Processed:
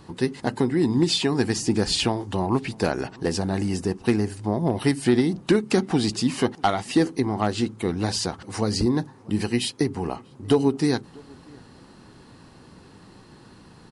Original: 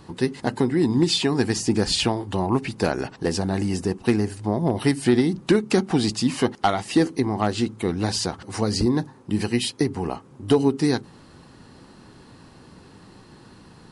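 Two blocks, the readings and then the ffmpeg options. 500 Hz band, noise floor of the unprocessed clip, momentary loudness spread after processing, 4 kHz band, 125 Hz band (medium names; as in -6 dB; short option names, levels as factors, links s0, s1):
-1.0 dB, -49 dBFS, 6 LU, -1.0 dB, -1.0 dB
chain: -filter_complex "[0:a]asplit=2[s0][s1];[s1]adelay=641.4,volume=0.0501,highshelf=f=4000:g=-14.4[s2];[s0][s2]amix=inputs=2:normalize=0,volume=0.891"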